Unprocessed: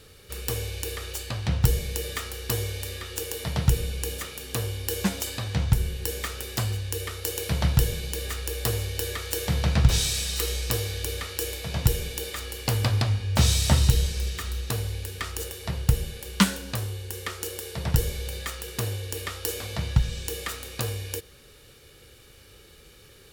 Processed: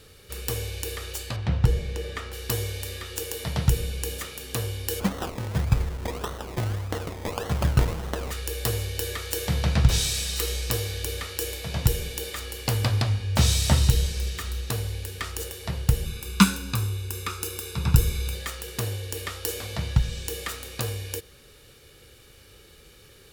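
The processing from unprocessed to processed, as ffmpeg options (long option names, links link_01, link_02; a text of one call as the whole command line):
ffmpeg -i in.wav -filter_complex "[0:a]asettb=1/sr,asplit=3[link_01][link_02][link_03];[link_01]atrim=end=1.364[link_04];[link_02]atrim=start=1.36:end=2.33,asetpts=PTS-STARTPTS,afade=type=in:duration=0.004:curve=qsin,afade=type=out:start_time=0.966:duration=0.004:curve=qsin,aemphasis=mode=reproduction:type=75fm[link_05];[link_03]atrim=start=2.326[link_06];[link_04][link_05]acrossfade=duration=0.004:curve1=hsin:curve2=qsin[link_07];[link_07][link_06]acrossfade=duration=0.004:curve1=qsin:curve2=hsin,asplit=3[link_08][link_09][link_10];[link_08]afade=type=out:start_time=4.99:duration=0.02[link_11];[link_09]acrusher=samples=25:mix=1:aa=0.000001:lfo=1:lforange=15:lforate=1.7,afade=type=in:start_time=4.99:duration=0.02,afade=type=out:start_time=8.3:duration=0.02[link_12];[link_10]afade=type=in:start_time=8.3:duration=0.02[link_13];[link_11][link_12][link_13]amix=inputs=3:normalize=0,asettb=1/sr,asplit=3[link_14][link_15][link_16];[link_14]atrim=end=16.054[link_17];[link_15]atrim=start=16.05:end=18.35,asetpts=PTS-STARTPTS,afade=type=in:duration=0.004:curve=qsin,afade=type=out:start_time=2.296:duration=0.004:curve=qsin,aecho=1:1:0.8:0.74,atrim=end_sample=101430[link_18];[link_16]atrim=start=18.346[link_19];[link_17][link_18]acrossfade=duration=0.004:curve1=hsin:curve2=qsin[link_20];[link_20][link_19]acrossfade=duration=0.004:curve1=qsin:curve2=hsin" out.wav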